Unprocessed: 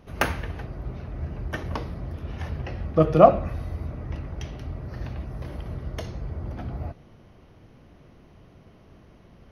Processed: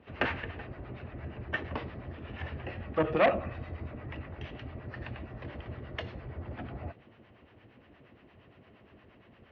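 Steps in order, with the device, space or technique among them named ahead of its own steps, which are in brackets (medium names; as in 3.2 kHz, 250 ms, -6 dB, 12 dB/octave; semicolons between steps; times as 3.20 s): guitar amplifier with harmonic tremolo (harmonic tremolo 8.6 Hz, depth 70%, crossover 660 Hz; saturation -19 dBFS, distortion -7 dB; cabinet simulation 97–3700 Hz, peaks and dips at 160 Hz -10 dB, 1.8 kHz +6 dB, 2.7 kHz +6 dB)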